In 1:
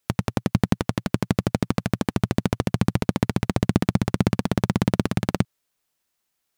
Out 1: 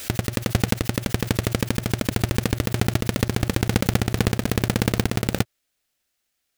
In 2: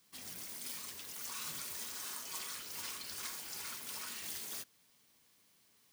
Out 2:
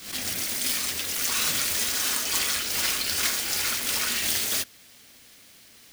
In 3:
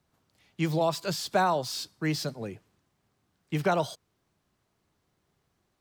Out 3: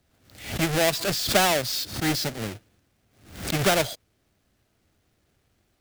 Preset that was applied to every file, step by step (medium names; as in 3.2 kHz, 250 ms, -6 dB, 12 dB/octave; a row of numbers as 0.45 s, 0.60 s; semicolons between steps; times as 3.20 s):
square wave that keeps the level; fifteen-band graphic EQ 160 Hz -8 dB, 400 Hz -4 dB, 1 kHz -9 dB; swell ahead of each attack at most 100 dB/s; normalise loudness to -24 LUFS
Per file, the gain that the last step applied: -1.0 dB, +15.0 dB, +3.5 dB